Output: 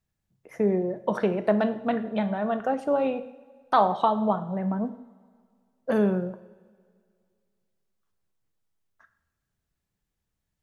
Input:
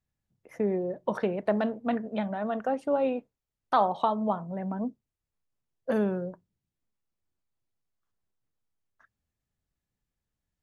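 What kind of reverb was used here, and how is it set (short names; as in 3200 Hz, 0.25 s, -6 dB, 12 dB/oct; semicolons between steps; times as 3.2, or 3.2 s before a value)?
two-slope reverb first 0.68 s, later 2.2 s, from -17 dB, DRR 9.5 dB; gain +3 dB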